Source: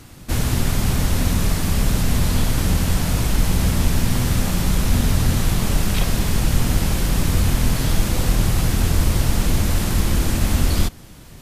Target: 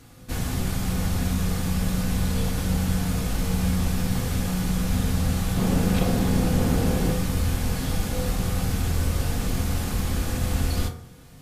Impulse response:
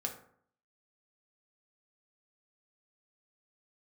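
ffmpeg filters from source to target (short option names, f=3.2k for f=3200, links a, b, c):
-filter_complex "[0:a]asettb=1/sr,asplit=3[a][b][c];[a]atrim=end=5.574[d];[b]atrim=start=5.57:end=7.12,asetpts=PTS-STARTPTS,afade=t=in:d=0.004:c=qsin,afade=t=out:st=1.546:d=0.004:c=qsin,equalizer=f=340:t=o:w=2.8:g=9[e];[c]atrim=start=7.116[f];[d][e]acrossfade=d=0.004:c1=hsin:c2=qsin[g];[g][f]acrossfade=d=0.004:c1=qsin:c2=hsin[h];[1:a]atrim=start_sample=2205[i];[h][i]afir=irnorm=-1:irlink=0,volume=-7dB"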